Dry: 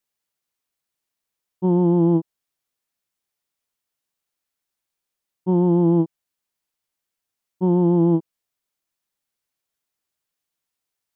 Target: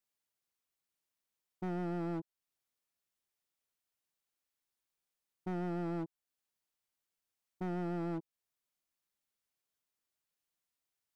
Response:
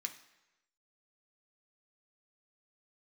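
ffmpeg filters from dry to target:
-af "alimiter=limit=0.119:level=0:latency=1:release=393,volume=26.6,asoftclip=hard,volume=0.0376,volume=0.473"

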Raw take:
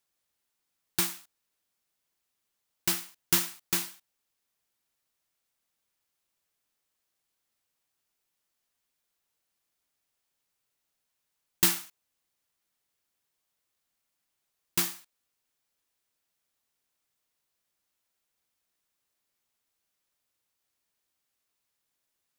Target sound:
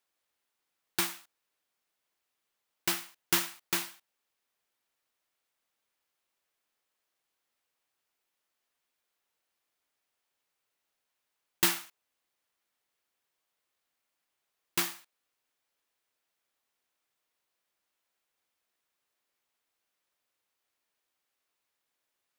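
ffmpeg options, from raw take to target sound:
-af "bass=f=250:g=-9,treble=f=4000:g=-6,volume=1.26"

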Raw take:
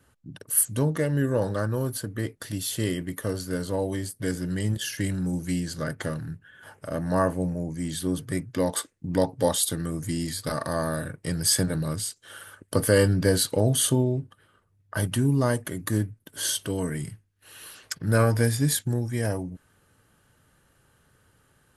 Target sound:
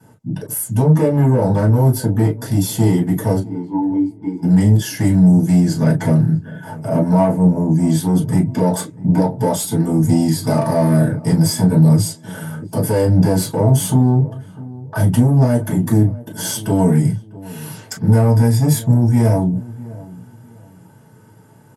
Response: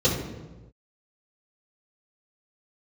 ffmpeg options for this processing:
-filter_complex "[0:a]alimiter=limit=0.158:level=0:latency=1:release=274,asplit=3[s0][s1][s2];[s0]afade=t=out:st=3.38:d=0.02[s3];[s1]asplit=3[s4][s5][s6];[s4]bandpass=f=300:t=q:w=8,volume=1[s7];[s5]bandpass=f=870:t=q:w=8,volume=0.501[s8];[s6]bandpass=f=2240:t=q:w=8,volume=0.355[s9];[s7][s8][s9]amix=inputs=3:normalize=0,afade=t=in:st=3.38:d=0.02,afade=t=out:st=4.42:d=0.02[s10];[s2]afade=t=in:st=4.42:d=0.02[s11];[s3][s10][s11]amix=inputs=3:normalize=0,asoftclip=type=tanh:threshold=0.0473,asplit=2[s12][s13];[s13]adelay=650,lowpass=f=930:p=1,volume=0.119,asplit=2[s14][s15];[s15]adelay=650,lowpass=f=930:p=1,volume=0.29[s16];[s12][s14][s16]amix=inputs=3:normalize=0[s17];[1:a]atrim=start_sample=2205,atrim=end_sample=3969,asetrate=79380,aresample=44100[s18];[s17][s18]afir=irnorm=-1:irlink=0"

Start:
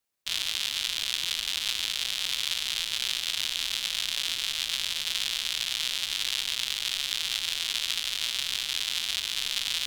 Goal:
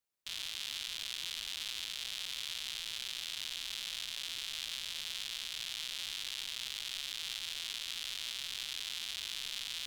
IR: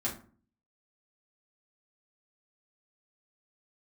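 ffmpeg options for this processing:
-af "alimiter=limit=0.158:level=0:latency=1:release=21,volume=0.447"

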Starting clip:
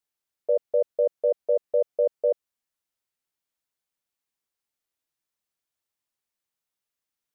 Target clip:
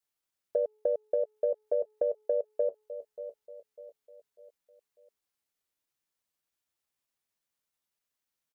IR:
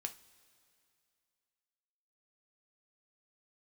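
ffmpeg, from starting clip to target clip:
-af "bandreject=f=428.2:t=h:w=4,bandreject=f=856.4:t=h:w=4,bandreject=f=1284.6:t=h:w=4,bandreject=f=1712.8:t=h:w=4,bandreject=f=2141:t=h:w=4,bandreject=f=2569.2:t=h:w=4,bandreject=f=2997.4:t=h:w=4,bandreject=f=3425.6:t=h:w=4,bandreject=f=3853.8:t=h:w=4,bandreject=f=4282:t=h:w=4,bandreject=f=4710.2:t=h:w=4,bandreject=f=5138.4:t=h:w=4,bandreject=f=5566.6:t=h:w=4,bandreject=f=5994.8:t=h:w=4,bandreject=f=6423:t=h:w=4,bandreject=f=6851.2:t=h:w=4,bandreject=f=7279.4:t=h:w=4,bandreject=f=7707.6:t=h:w=4,bandreject=f=8135.8:t=h:w=4,bandreject=f=8564:t=h:w=4,bandreject=f=8992.2:t=h:w=4,bandreject=f=9420.4:t=h:w=4,bandreject=f=9848.6:t=h:w=4,adynamicequalizer=threshold=0.0112:dfrequency=250:dqfactor=1:tfrequency=250:tqfactor=1:attack=5:release=100:ratio=0.375:range=2.5:mode=cutabove:tftype=bell,aecho=1:1:514|1028|1542|2056:0.141|0.0593|0.0249|0.0105,atempo=0.86,acompressor=threshold=0.0562:ratio=6"

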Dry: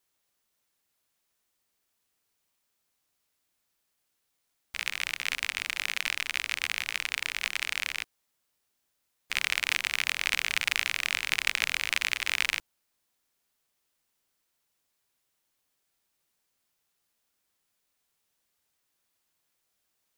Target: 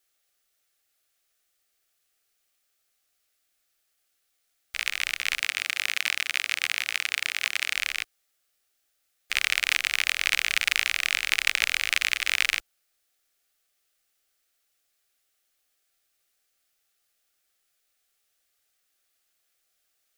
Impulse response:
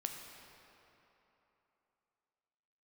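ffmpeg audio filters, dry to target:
-filter_complex "[0:a]asuperstop=centerf=970:order=4:qfactor=3.4,equalizer=f=160:w=0.68:g=-14,asettb=1/sr,asplit=3[s0][s1][s2];[s0]atrim=end=5.404[s3];[s1]atrim=start=5.4:end=7.75,asetpts=PTS-STARTPTS,afade=t=in:d=0.004:c=qsin,afade=t=out:st=2.346:d=0.004:c=qsin,highpass=f=91:w=0.5412,highpass=f=91:w=1.3066[s4];[s2]atrim=start=7.746[s5];[s3][s4]acrossfade=d=0.004:c1=hsin:c2=qsin[s6];[s6][s5]acrossfade=d=0.004:c1=qsin:c2=hsin,volume=1.58"

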